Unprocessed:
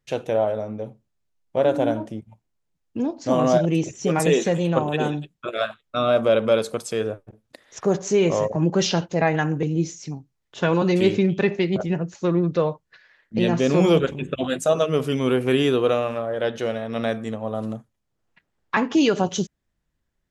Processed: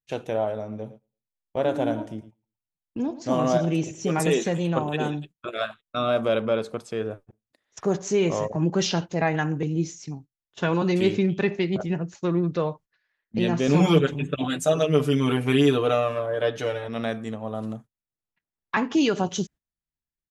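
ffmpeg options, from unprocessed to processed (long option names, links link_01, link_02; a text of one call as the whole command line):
ffmpeg -i in.wav -filter_complex "[0:a]asplit=3[link_01][link_02][link_03];[link_01]afade=type=out:start_time=0.71:duration=0.02[link_04];[link_02]aecho=1:1:112|224|336:0.178|0.0462|0.012,afade=type=in:start_time=0.71:duration=0.02,afade=type=out:start_time=4.37:duration=0.02[link_05];[link_03]afade=type=in:start_time=4.37:duration=0.02[link_06];[link_04][link_05][link_06]amix=inputs=3:normalize=0,asettb=1/sr,asplit=3[link_07][link_08][link_09];[link_07]atrim=end=6.424[link_10];[link_08]atrim=start=6.42:end=7.11,asetpts=PTS-STARTPTS,afade=type=in:duration=0.004:curve=qsin,afade=type=out:start_time=0.686:duration=0.004:curve=qsin,lowpass=frequency=2200:poles=1[link_11];[link_09]atrim=start=7.106[link_12];[link_10][link_11]acrossfade=duration=0.004:curve1=hsin:curve2=qsin[link_13];[link_13][link_12]acrossfade=duration=0.004:curve1=qsin:curve2=hsin,asettb=1/sr,asplit=3[link_14][link_15][link_16];[link_14]atrim=end=13.674[link_17];[link_15]atrim=start=13.67:end=16.89,asetpts=PTS-STARTPTS,afade=type=in:duration=0.004:curve=qsin,afade=type=out:start_time=3.216:duration=0.004:curve=qsin,aecho=1:1:6.8:0.94,atrim=end_sample=142002[link_18];[link_16]atrim=start=16.886[link_19];[link_17][link_18]acrossfade=duration=0.004:curve1=hsin:curve2=qsin[link_20];[link_20][link_19]acrossfade=duration=0.004:curve1=qsin:curve2=hsin,agate=range=-17dB:threshold=-40dB:ratio=16:detection=peak,equalizer=frequency=530:width_type=o:width=0.44:gain=-3.5,volume=-2.5dB" out.wav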